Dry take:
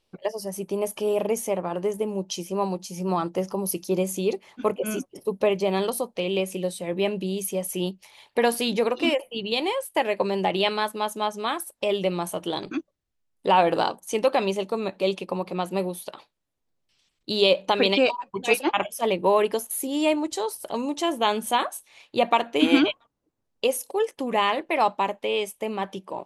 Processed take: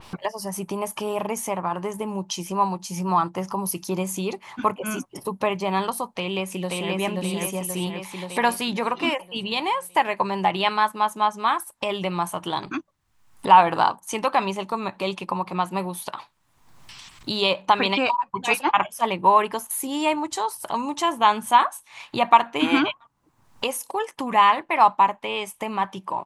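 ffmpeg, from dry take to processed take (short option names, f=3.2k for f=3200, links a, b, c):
-filter_complex "[0:a]asplit=2[a][b];[b]afade=t=in:st=6.14:d=0.01,afade=t=out:st=6.94:d=0.01,aecho=0:1:530|1060|1590|2120|2650|3180|3710|4240:0.891251|0.490188|0.269603|0.148282|0.081555|0.0448553|0.0246704|0.0135687[c];[a][c]amix=inputs=2:normalize=0,equalizer=f=125:t=o:w=1:g=6,equalizer=f=500:t=o:w=1:g=-8,equalizer=f=1k:t=o:w=1:g=12,equalizer=f=2k:t=o:w=1:g=3,equalizer=f=8k:t=o:w=1:g=3,acompressor=mode=upward:threshold=-22dB:ratio=2.5,adynamicequalizer=threshold=0.0282:dfrequency=2800:dqfactor=0.7:tfrequency=2800:tqfactor=0.7:attack=5:release=100:ratio=0.375:range=2:mode=cutabove:tftype=highshelf,volume=-1.5dB"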